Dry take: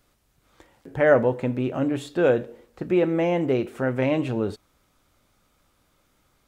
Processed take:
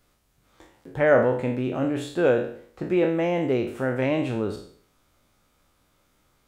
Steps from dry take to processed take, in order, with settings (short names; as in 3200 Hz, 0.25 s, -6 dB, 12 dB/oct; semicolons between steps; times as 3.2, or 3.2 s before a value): spectral trails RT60 0.56 s; gain -2 dB